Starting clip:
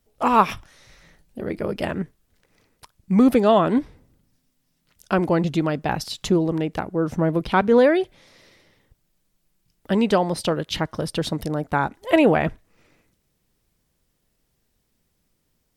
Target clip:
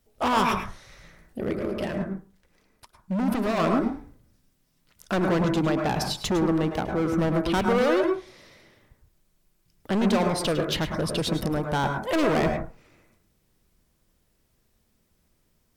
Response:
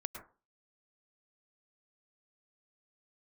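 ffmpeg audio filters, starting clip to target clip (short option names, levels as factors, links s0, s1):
-filter_complex "[0:a]volume=11.9,asoftclip=hard,volume=0.0841,asplit=3[s0][s1][s2];[s0]afade=t=out:st=1.56:d=0.02[s3];[s1]flanger=delay=3:depth=2.8:regen=-50:speed=1.8:shape=sinusoidal,afade=t=in:st=1.56:d=0.02,afade=t=out:st=3.57:d=0.02[s4];[s2]afade=t=in:st=3.57:d=0.02[s5];[s3][s4][s5]amix=inputs=3:normalize=0[s6];[1:a]atrim=start_sample=2205[s7];[s6][s7]afir=irnorm=-1:irlink=0,volume=1.41"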